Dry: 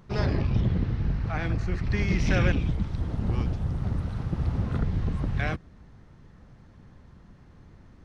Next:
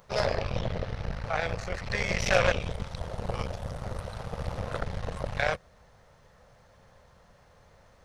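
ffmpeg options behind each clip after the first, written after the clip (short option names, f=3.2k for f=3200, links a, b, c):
-af "crystalizer=i=1.5:c=0,aeval=exprs='0.282*(cos(1*acos(clip(val(0)/0.282,-1,1)))-cos(1*PI/2))+0.0794*(cos(4*acos(clip(val(0)/0.282,-1,1)))-cos(4*PI/2))':c=same,lowshelf=f=410:t=q:w=3:g=-9"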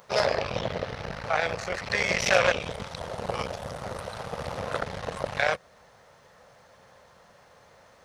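-filter_complex "[0:a]highpass=f=310:p=1,asplit=2[a][b];[b]alimiter=limit=-18.5dB:level=0:latency=1:release=280,volume=-1dB[c];[a][c]amix=inputs=2:normalize=0"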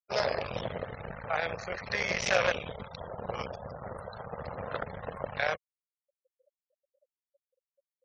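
-af "afftfilt=real='re*gte(hypot(re,im),0.0141)':imag='im*gte(hypot(re,im),0.0141)':win_size=1024:overlap=0.75,volume=-5dB"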